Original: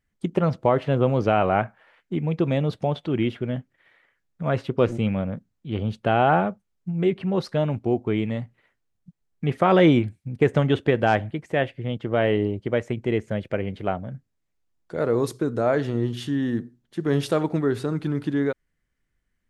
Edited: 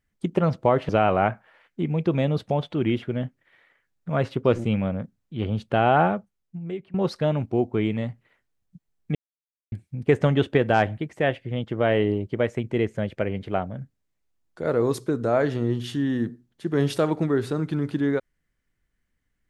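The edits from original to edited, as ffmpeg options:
-filter_complex "[0:a]asplit=5[a][b][c][d][e];[a]atrim=end=0.892[f];[b]atrim=start=1.218:end=7.27,asetpts=PTS-STARTPTS,afade=t=out:st=5.172:d=0.88:silence=0.0891251[g];[c]atrim=start=7.27:end=9.48,asetpts=PTS-STARTPTS,afade=t=in:d=0.004:c=hsin:silence=0.0891251,afade=t=out:st=2.206:d=0.004:c=hsin[h];[d]atrim=start=9.48:end=10.05,asetpts=PTS-STARTPTS,volume=0[i];[e]atrim=start=10.05,asetpts=PTS-STARTPTS,afade=t=in:d=0.004:c=hsin[j];[g][h][i][j]concat=n=4:v=0:a=1[k];[f][k]acrossfade=d=0.004:c1=hsin:c2=hsin"

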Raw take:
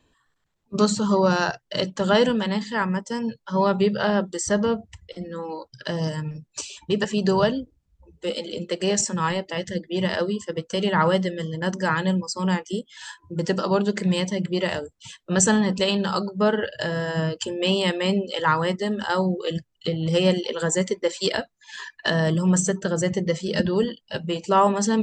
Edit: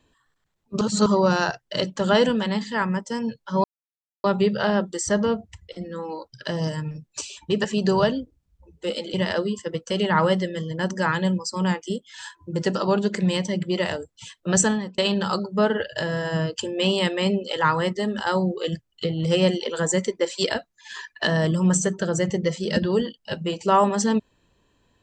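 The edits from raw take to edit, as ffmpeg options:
-filter_complex "[0:a]asplit=6[a][b][c][d][e][f];[a]atrim=end=0.812[g];[b]atrim=start=0.808:end=1.062,asetpts=PTS-STARTPTS,areverse[h];[c]atrim=start=1.058:end=3.64,asetpts=PTS-STARTPTS,afade=t=out:st=2.578:d=0.004:c=hsin,apad=pad_dur=0.6[i];[d]atrim=start=3.64:end=8.542,asetpts=PTS-STARTPTS,afade=t=in:d=0.004:c=hsin[j];[e]atrim=start=9.968:end=15.81,asetpts=PTS-STARTPTS,afade=t=out:st=5.452:d=0.39[k];[f]atrim=start=15.81,asetpts=PTS-STARTPTS,afade=t=in:d=0.004:c=hsin[l];[g][h]acrossfade=d=0.004:c1=hsin:c2=hsin[m];[i][j]concat=n=2:v=0:a=1[n];[m][n]acrossfade=d=0.004:c1=hsin:c2=hsin[o];[k][l]concat=n=2:v=0:a=1[p];[o][p]acrossfade=d=0.004:c1=hsin:c2=hsin"

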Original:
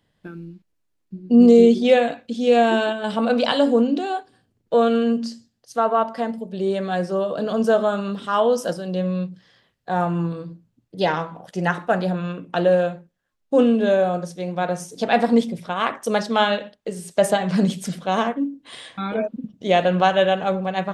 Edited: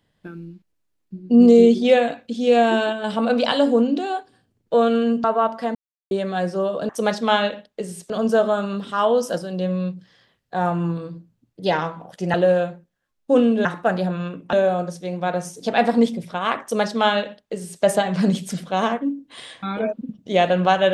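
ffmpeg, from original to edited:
-filter_complex "[0:a]asplit=9[a][b][c][d][e][f][g][h][i];[a]atrim=end=5.242[j];[b]atrim=start=5.798:end=6.31,asetpts=PTS-STARTPTS,afade=t=out:st=0.508:d=0.004:c=hsin[k];[c]atrim=start=6.31:end=6.67,asetpts=PTS-STARTPTS,volume=0[l];[d]atrim=start=6.67:end=7.452,asetpts=PTS-STARTPTS,afade=t=in:d=0.004:c=hsin[m];[e]atrim=start=15.968:end=17.182[n];[f]atrim=start=7.448:end=11.692[o];[g]atrim=start=12.568:end=13.882[p];[h]atrim=start=11.688:end=12.572[q];[i]atrim=start=13.878[r];[k][l][m]concat=n=3:v=0:a=1[s];[j][s]acrossfade=d=0.004:c1=hsin:c2=hsin[t];[t][n]acrossfade=d=0.004:c1=hsin:c2=hsin[u];[u][o]acrossfade=d=0.004:c1=hsin:c2=hsin[v];[v][p]acrossfade=d=0.004:c1=hsin:c2=hsin[w];[w][q]acrossfade=d=0.004:c1=hsin:c2=hsin[x];[x][r]acrossfade=d=0.004:c1=hsin:c2=hsin"

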